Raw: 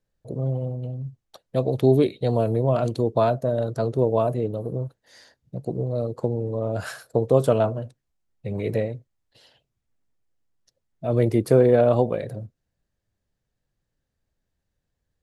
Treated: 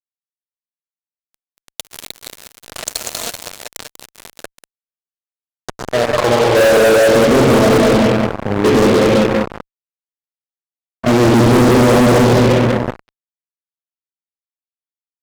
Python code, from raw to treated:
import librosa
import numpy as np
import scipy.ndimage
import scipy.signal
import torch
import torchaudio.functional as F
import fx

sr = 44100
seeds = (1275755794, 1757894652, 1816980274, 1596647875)

p1 = fx.high_shelf(x, sr, hz=4600.0, db=8.0)
p2 = fx.level_steps(p1, sr, step_db=13)
p3 = fx.filter_sweep_bandpass(p2, sr, from_hz=7300.0, to_hz=260.0, start_s=5.16, end_s=7.01, q=2.0)
p4 = p3 + fx.echo_feedback(p3, sr, ms=192, feedback_pct=46, wet_db=-5.5, dry=0)
p5 = fx.rev_gated(p4, sr, seeds[0], gate_ms=430, shape='flat', drr_db=-1.5)
p6 = fx.fuzz(p5, sr, gain_db=46.0, gate_db=-44.0)
y = p6 * 10.0 ** (5.0 / 20.0)